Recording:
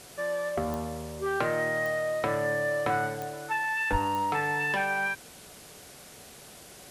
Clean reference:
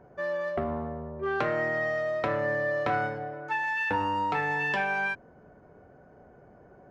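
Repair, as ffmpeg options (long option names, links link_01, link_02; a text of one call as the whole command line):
ffmpeg -i in.wav -filter_complex "[0:a]adeclick=threshold=4,asplit=3[link_01][link_02][link_03];[link_01]afade=type=out:start_time=3.91:duration=0.02[link_04];[link_02]highpass=frequency=140:width=0.5412,highpass=frequency=140:width=1.3066,afade=type=in:start_time=3.91:duration=0.02,afade=type=out:start_time=4.03:duration=0.02[link_05];[link_03]afade=type=in:start_time=4.03:duration=0.02[link_06];[link_04][link_05][link_06]amix=inputs=3:normalize=0,afwtdn=0.004" out.wav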